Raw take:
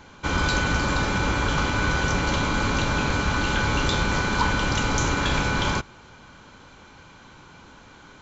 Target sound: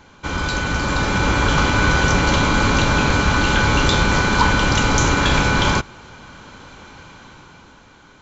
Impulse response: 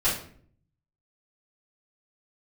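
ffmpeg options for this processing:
-af "dynaudnorm=f=120:g=17:m=8dB"

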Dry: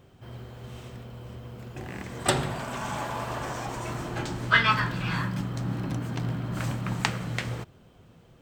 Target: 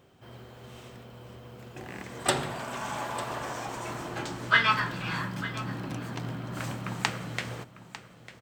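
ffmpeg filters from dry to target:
-af "lowshelf=f=140:g=-11.5,aecho=1:1:899:0.178,volume=-1dB"

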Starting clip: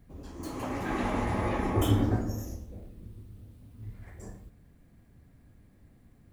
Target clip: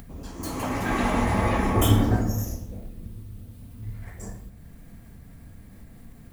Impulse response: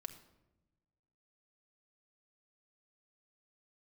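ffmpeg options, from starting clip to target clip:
-filter_complex "[0:a]acompressor=mode=upward:threshold=-45dB:ratio=2.5,asplit=2[a][b];[b]equalizer=f=360:t=o:w=0.77:g=-9[c];[1:a]atrim=start_sample=2205,highshelf=f=6.9k:g=9.5[d];[c][d]afir=irnorm=-1:irlink=0,volume=6.5dB[e];[a][e]amix=inputs=2:normalize=0"

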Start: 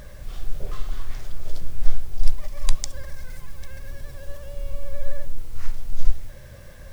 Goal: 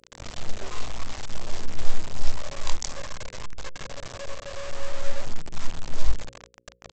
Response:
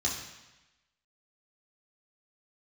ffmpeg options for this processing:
-af "afftfilt=real='re':imag='-im':win_size=2048:overlap=0.75,firequalizer=gain_entry='entry(130,0);entry(420,5);entry(980,9);entry(1500,0);entry(2300,4)':delay=0.05:min_phase=1,aresample=16000,acrusher=bits=5:mix=0:aa=0.000001,aresample=44100,bandreject=f=60:t=h:w=6,bandreject=f=120:t=h:w=6,bandreject=f=180:t=h:w=6,bandreject=f=240:t=h:w=6,bandreject=f=300:t=h:w=6,bandreject=f=360:t=h:w=6,bandreject=f=420:t=h:w=6,bandreject=f=480:t=h:w=6,bandreject=f=540:t=h:w=6"

